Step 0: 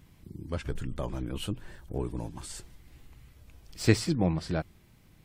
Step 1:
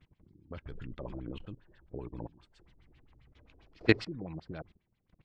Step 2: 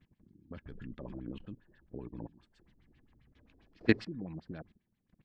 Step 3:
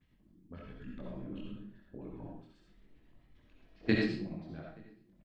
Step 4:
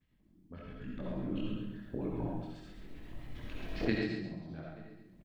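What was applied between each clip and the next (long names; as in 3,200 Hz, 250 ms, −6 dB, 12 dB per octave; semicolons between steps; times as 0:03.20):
output level in coarse steps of 19 dB; gain on a spectral selection 0:03.35–0:04.02, 230–7,200 Hz +6 dB; auto-filter low-pass sine 7.5 Hz 340–4,000 Hz; level −4 dB
hollow resonant body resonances 220/1,700 Hz, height 9 dB, ringing for 25 ms; level −5.5 dB
multi-voice chorus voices 4, 0.98 Hz, delay 23 ms, depth 3 ms; slap from a distant wall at 150 metres, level −27 dB; convolution reverb RT60 0.50 s, pre-delay 25 ms, DRR −1.5 dB
camcorder AGC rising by 8.7 dB per second; repeating echo 135 ms, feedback 28%, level −7.5 dB; level −5 dB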